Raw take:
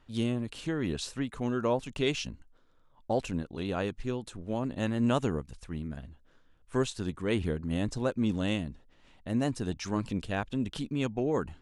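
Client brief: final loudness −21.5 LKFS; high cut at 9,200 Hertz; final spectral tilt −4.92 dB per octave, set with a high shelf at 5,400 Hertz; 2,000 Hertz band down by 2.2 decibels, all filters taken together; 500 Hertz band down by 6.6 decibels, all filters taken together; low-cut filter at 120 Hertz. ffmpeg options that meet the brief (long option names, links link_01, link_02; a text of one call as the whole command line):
ffmpeg -i in.wav -af "highpass=120,lowpass=9200,equalizer=frequency=500:width_type=o:gain=-8.5,equalizer=frequency=2000:width_type=o:gain=-4,highshelf=frequency=5400:gain=8.5,volume=13.5dB" out.wav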